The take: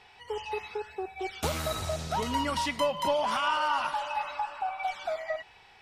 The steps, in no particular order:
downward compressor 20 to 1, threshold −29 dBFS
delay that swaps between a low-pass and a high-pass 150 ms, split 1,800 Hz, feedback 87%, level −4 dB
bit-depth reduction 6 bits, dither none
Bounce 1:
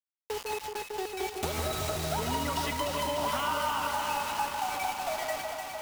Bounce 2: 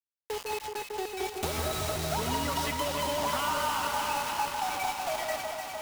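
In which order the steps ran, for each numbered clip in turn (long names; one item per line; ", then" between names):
bit-depth reduction, then downward compressor, then delay that swaps between a low-pass and a high-pass
downward compressor, then bit-depth reduction, then delay that swaps between a low-pass and a high-pass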